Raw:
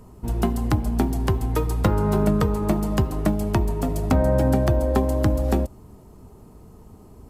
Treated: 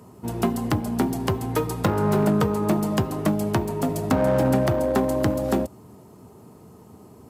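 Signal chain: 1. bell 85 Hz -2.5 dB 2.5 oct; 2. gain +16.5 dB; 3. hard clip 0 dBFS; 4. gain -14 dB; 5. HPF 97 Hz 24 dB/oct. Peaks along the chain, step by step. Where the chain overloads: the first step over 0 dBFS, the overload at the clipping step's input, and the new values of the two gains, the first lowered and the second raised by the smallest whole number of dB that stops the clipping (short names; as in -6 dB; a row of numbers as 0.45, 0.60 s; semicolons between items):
-10.0, +6.5, 0.0, -14.0, -7.0 dBFS; step 2, 6.5 dB; step 2 +9.5 dB, step 4 -7 dB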